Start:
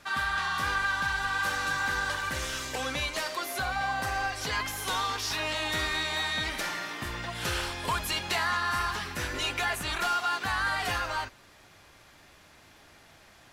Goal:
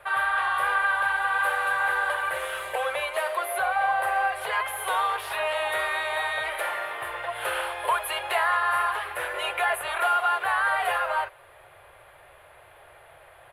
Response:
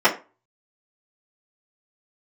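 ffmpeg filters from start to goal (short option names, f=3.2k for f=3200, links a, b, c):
-filter_complex "[0:a]firequalizer=gain_entry='entry(140,0);entry(210,-28);entry(360,0);entry(540,11);entry(870,7);entry(2300,2);entry(3200,-1);entry(5700,-24);entry(10000,6);entry(15000,-4)':delay=0.05:min_phase=1,acrossover=split=380[a][b];[a]acompressor=threshold=-54dB:ratio=10[c];[c][b]amix=inputs=2:normalize=0"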